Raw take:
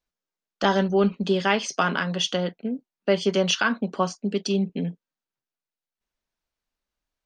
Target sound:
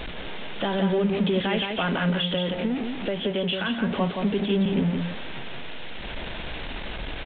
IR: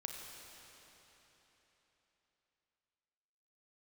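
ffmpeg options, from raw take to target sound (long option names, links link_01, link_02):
-filter_complex "[0:a]aeval=exprs='val(0)+0.5*0.0631*sgn(val(0))':channel_layout=same,equalizer=frequency=1200:width=1.8:gain=-7,asettb=1/sr,asplit=3[link_01][link_02][link_03];[link_01]atrim=end=2.094[link_04];[link_02]atrim=start=2.09:end=3.82,asetpts=PTS-STARTPTS,afade=type=in:duration=0.004:curve=qsin,afade=type=out:start_time=1.726:duration=0.004:curve=qsin,acompressor=threshold=-23dB:ratio=6[link_05];[link_03]atrim=start=3.816[link_06];[link_04][link_05]acrossfade=duration=0.004:curve1=hsin:curve2=qsin[link_07];[link_07][link_06]acrossfade=duration=0.004:curve1=qsin:curve2=hsin,alimiter=limit=-16.5dB:level=0:latency=1:release=86,aecho=1:1:172:0.562,aresample=8000,aresample=44100"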